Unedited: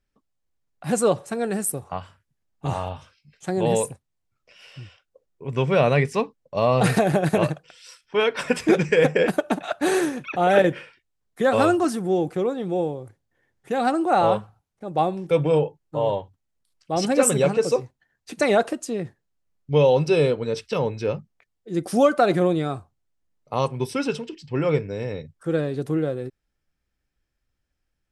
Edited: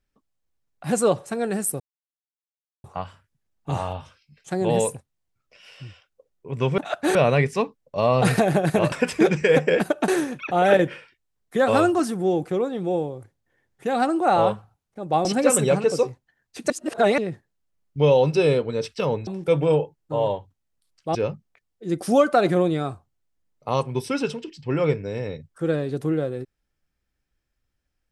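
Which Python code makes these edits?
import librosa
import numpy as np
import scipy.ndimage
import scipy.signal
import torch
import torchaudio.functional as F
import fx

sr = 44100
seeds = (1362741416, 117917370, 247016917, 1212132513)

y = fx.edit(x, sr, fx.insert_silence(at_s=1.8, length_s=1.04),
    fx.cut(start_s=7.51, length_s=0.89),
    fx.move(start_s=9.56, length_s=0.37, to_s=5.74),
    fx.move(start_s=15.1, length_s=1.88, to_s=21.0),
    fx.reverse_span(start_s=18.43, length_s=0.48), tone=tone)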